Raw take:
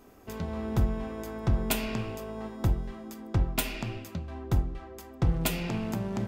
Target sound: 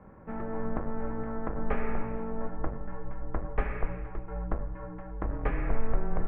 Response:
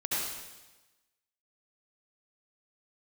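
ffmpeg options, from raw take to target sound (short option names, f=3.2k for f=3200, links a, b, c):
-filter_complex "[0:a]asoftclip=type=tanh:threshold=-23dB,highpass=f=250:t=q:w=0.5412,highpass=f=250:t=q:w=1.307,lowpass=f=2k:t=q:w=0.5176,lowpass=f=2k:t=q:w=0.7071,lowpass=f=2k:t=q:w=1.932,afreqshift=-210,asplit=2[a][b];[1:a]atrim=start_sample=2205[c];[b][c]afir=irnorm=-1:irlink=0,volume=-21.5dB[d];[a][d]amix=inputs=2:normalize=0,asubboost=boost=6.5:cutoff=52,volume=5dB"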